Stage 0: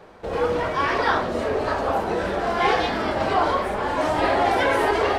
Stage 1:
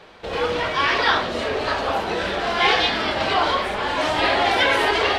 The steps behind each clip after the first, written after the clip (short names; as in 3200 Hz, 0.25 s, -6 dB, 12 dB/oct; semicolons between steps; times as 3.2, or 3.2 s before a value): bell 3400 Hz +13 dB 1.9 oct; gain -2 dB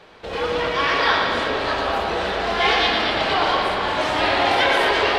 analogue delay 0.116 s, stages 4096, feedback 74%, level -5 dB; gain -1.5 dB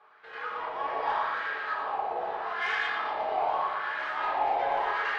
wah 0.82 Hz 720–1600 Hz, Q 3; soft clip -17 dBFS, distortion -20 dB; reverb RT60 0.50 s, pre-delay 3 ms, DRR 0.5 dB; gain -6 dB